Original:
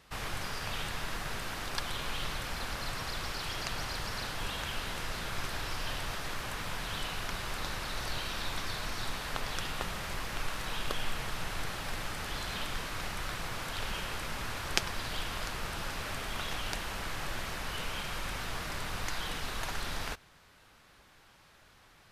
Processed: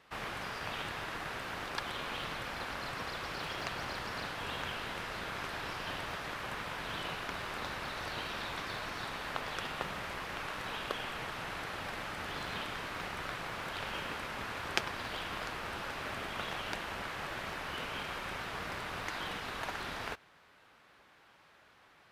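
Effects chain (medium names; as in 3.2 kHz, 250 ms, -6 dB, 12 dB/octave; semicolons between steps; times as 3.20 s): in parallel at -7 dB: Schmitt trigger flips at -32 dBFS; on the sum: high-pass 150 Hz 6 dB/octave; tone controls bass -4 dB, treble -10 dB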